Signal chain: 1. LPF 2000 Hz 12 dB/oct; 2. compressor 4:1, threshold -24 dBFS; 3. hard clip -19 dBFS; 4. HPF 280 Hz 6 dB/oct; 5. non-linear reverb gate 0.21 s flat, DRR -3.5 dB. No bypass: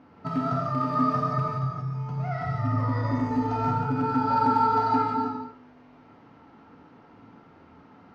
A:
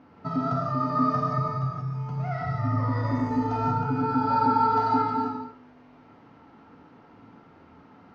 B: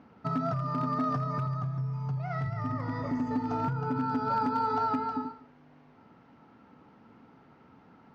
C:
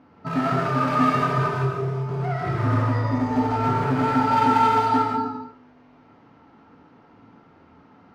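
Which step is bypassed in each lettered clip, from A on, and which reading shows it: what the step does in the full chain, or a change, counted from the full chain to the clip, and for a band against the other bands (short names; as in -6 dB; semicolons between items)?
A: 3, distortion -28 dB; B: 5, crest factor change -2.5 dB; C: 2, 2 kHz band +5.5 dB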